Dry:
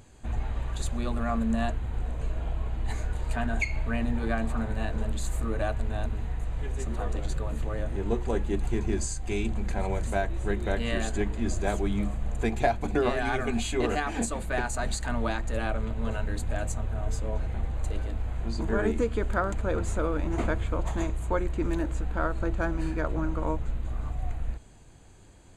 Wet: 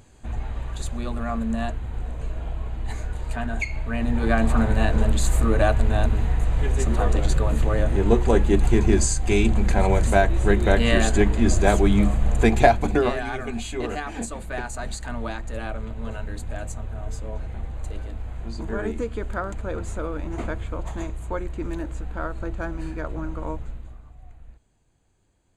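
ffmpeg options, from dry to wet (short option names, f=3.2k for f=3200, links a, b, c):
-af "volume=10dB,afade=t=in:st=3.89:d=0.65:silence=0.354813,afade=t=out:st=12.6:d=0.66:silence=0.266073,afade=t=out:st=23.58:d=0.44:silence=0.237137"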